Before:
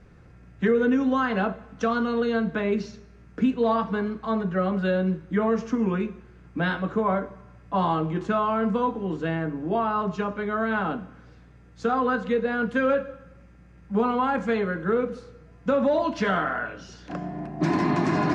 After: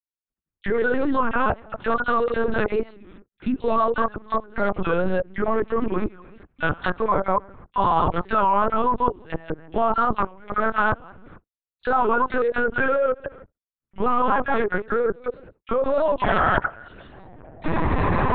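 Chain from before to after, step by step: reverse delay 0.144 s, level -1 dB; gate -41 dBFS, range -53 dB; in parallel at -1 dB: compressor 16:1, threshold -31 dBFS, peak gain reduction 17.5 dB; on the sum: dynamic EQ 110 Hz, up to -5 dB, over -34 dBFS, Q 0.84; level quantiser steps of 23 dB; bell 1100 Hz +3.5 dB 1.3 oct; dispersion lows, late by 46 ms, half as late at 1800 Hz; LPC vocoder at 8 kHz pitch kept; record warp 33 1/3 rpm, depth 160 cents; gain +2 dB

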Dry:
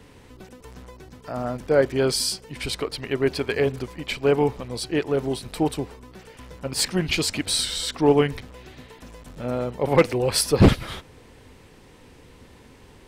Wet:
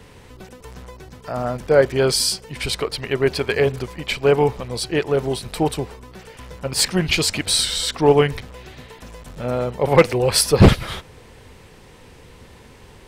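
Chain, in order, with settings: bell 280 Hz -6 dB 0.51 oct; gain +5 dB

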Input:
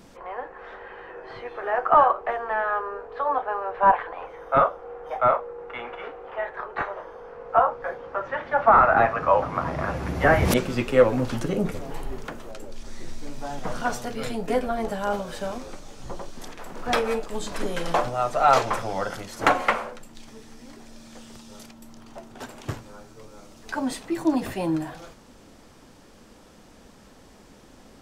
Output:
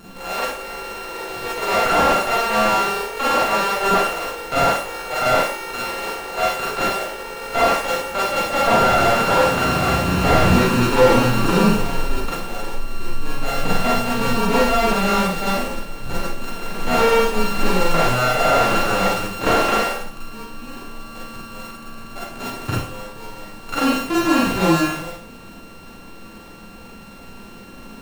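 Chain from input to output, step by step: sample sorter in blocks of 32 samples; in parallel at -2.5 dB: negative-ratio compressor -25 dBFS; on the sum: Schroeder reverb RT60 0.46 s, combs from 33 ms, DRR -5.5 dB; slew limiter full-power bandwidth 330 Hz; gain -1.5 dB

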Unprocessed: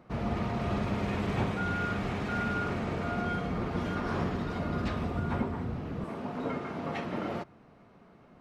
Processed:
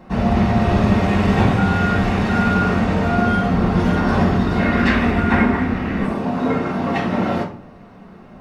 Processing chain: 4.58–6.07 graphic EQ 125/250/2000 Hz -9/+4/+12 dB; reverb RT60 0.50 s, pre-delay 4 ms, DRR -1.5 dB; gain +8.5 dB

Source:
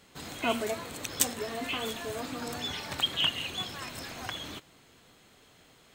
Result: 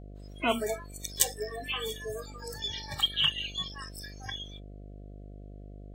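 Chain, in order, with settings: spectral noise reduction 28 dB; buzz 50 Hz, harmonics 14, -47 dBFS -6 dB/oct; gain +1.5 dB

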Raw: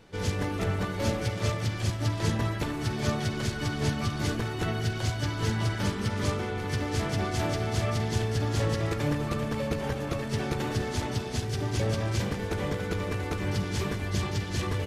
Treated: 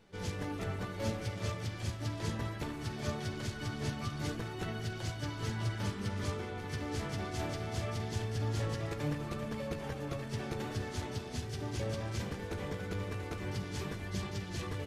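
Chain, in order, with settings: flange 0.21 Hz, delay 4.7 ms, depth 9.9 ms, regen +73%; gain -4 dB

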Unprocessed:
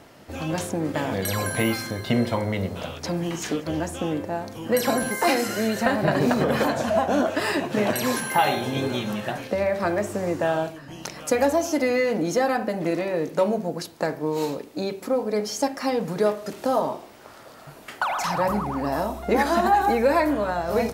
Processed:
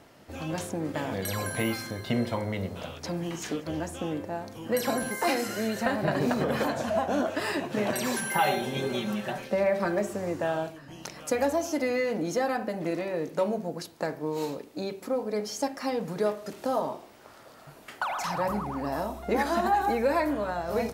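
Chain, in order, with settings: 7.92–10.14 comb 5.2 ms, depth 67%; gain -5.5 dB

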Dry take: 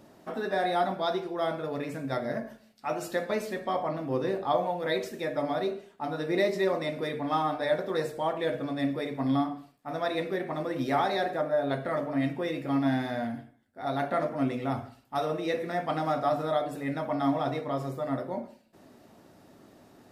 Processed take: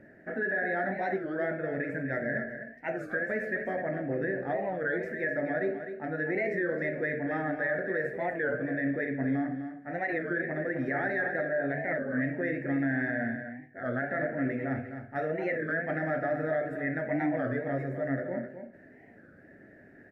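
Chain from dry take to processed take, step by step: EQ curve 630 Hz 0 dB, 1100 Hz -21 dB, 1700 Hz +15 dB, 3300 Hz -22 dB; limiter -22 dBFS, peak gain reduction 10.5 dB; on a send: echo 0.255 s -9 dB; on the sum: record warp 33 1/3 rpm, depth 160 cents

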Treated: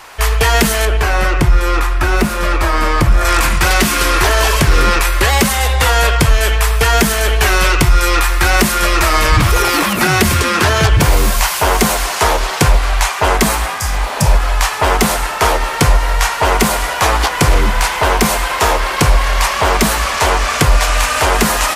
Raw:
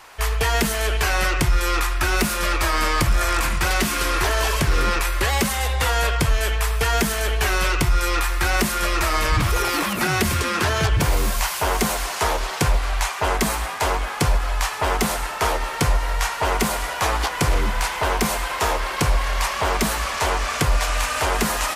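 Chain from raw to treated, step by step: 0.85–3.25 high shelf 2100 Hz -10 dB; 13.82–14.26 spectral repair 230–4600 Hz both; gain +8.5 dB

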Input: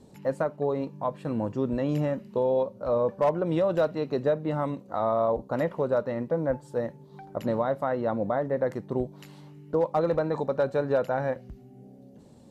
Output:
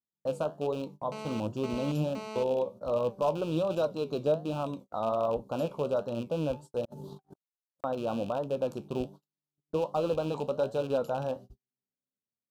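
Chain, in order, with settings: rattling part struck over -32 dBFS, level -28 dBFS; Butterworth band-stop 2000 Hz, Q 1.2; flange 1.3 Hz, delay 8.1 ms, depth 6.5 ms, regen +70%; 6.85–7.84 negative-ratio compressor -54 dBFS, ratio -0.5; high shelf 3300 Hz +6.5 dB; gate -44 dBFS, range -47 dB; 1.12–2.43 GSM buzz -40 dBFS

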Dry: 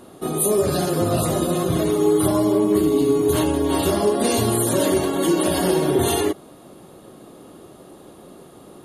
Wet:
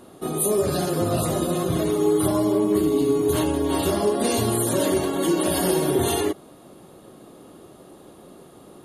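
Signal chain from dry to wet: 5.47–5.98 high shelf 11000 Hz -> 6800 Hz +9 dB; gain -2.5 dB

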